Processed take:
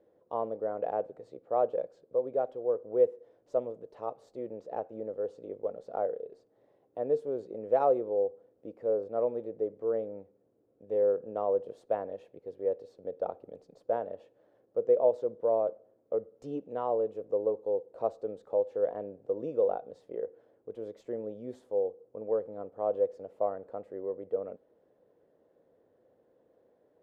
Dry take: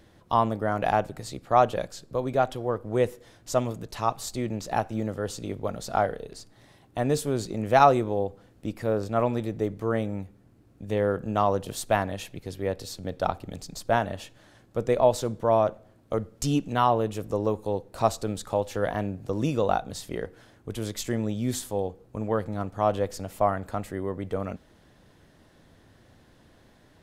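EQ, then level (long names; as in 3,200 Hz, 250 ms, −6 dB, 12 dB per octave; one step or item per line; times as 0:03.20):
resonant band-pass 490 Hz, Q 4.5
+1.5 dB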